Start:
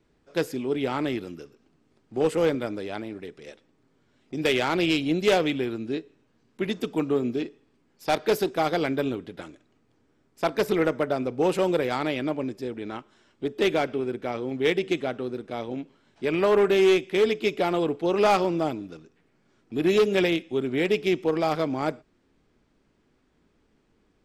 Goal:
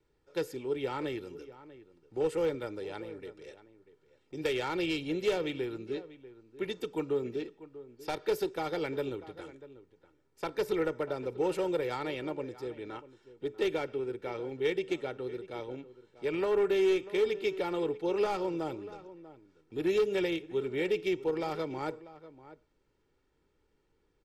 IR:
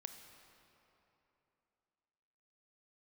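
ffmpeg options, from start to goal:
-filter_complex "[0:a]acrossover=split=370[link_01][link_02];[link_02]acompressor=threshold=-23dB:ratio=6[link_03];[link_01][link_03]amix=inputs=2:normalize=0,aecho=1:1:2.2:0.57,asplit=2[link_04][link_05];[link_05]adelay=641.4,volume=-16dB,highshelf=frequency=4000:gain=-14.4[link_06];[link_04][link_06]amix=inputs=2:normalize=0,volume=-8.5dB"

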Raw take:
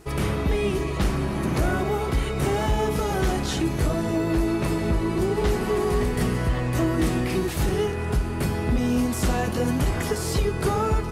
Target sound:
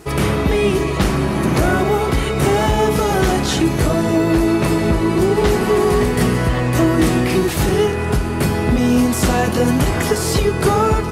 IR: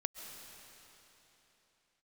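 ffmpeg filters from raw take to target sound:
-af "highpass=frequency=87:poles=1,volume=9dB"

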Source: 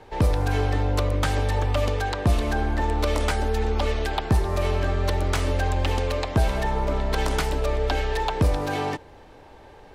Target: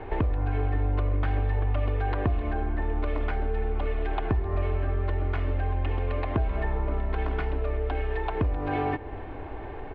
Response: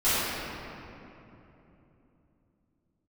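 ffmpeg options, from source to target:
-filter_complex "[0:a]lowpass=frequency=2600:width=0.5412,lowpass=frequency=2600:width=1.3066,lowshelf=frequency=220:gain=4.5,aecho=1:1:2.8:0.4,acompressor=threshold=-32dB:ratio=6,asplit=2[link_01][link_02];[1:a]atrim=start_sample=2205[link_03];[link_02][link_03]afir=irnorm=-1:irlink=0,volume=-33dB[link_04];[link_01][link_04]amix=inputs=2:normalize=0,volume=7dB"

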